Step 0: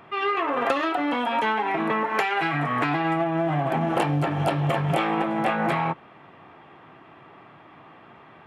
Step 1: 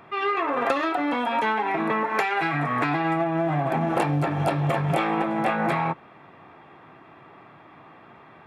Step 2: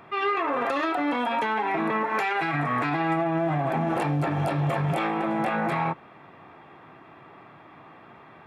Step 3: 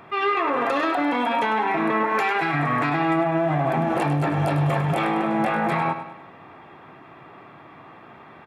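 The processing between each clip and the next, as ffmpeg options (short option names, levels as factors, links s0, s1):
-af "bandreject=f=3000:w=8.5"
-af "alimiter=limit=0.133:level=0:latency=1:release=26"
-af "aecho=1:1:101|202|303|404|505:0.316|0.142|0.064|0.0288|0.013,volume=1.41"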